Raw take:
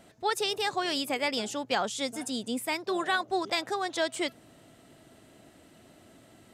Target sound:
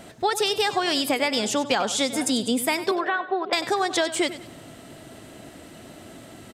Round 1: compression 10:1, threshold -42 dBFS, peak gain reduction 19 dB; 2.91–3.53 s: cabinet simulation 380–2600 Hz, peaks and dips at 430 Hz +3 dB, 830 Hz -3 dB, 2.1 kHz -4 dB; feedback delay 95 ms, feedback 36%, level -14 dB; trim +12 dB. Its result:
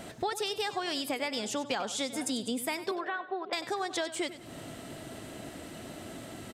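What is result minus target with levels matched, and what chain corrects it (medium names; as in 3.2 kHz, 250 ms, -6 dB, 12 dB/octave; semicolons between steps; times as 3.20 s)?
compression: peak gain reduction +10 dB
compression 10:1, threshold -31 dBFS, peak gain reduction 9 dB; 2.91–3.53 s: cabinet simulation 380–2600 Hz, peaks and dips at 430 Hz +3 dB, 830 Hz -3 dB, 2.1 kHz -4 dB; feedback delay 95 ms, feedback 36%, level -14 dB; trim +12 dB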